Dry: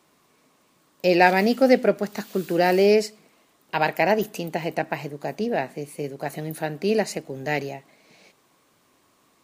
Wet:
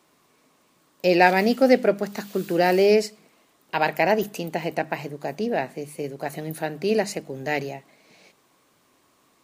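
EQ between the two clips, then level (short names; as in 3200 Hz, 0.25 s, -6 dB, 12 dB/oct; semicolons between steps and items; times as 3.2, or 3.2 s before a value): notches 50/100/150/200 Hz; 0.0 dB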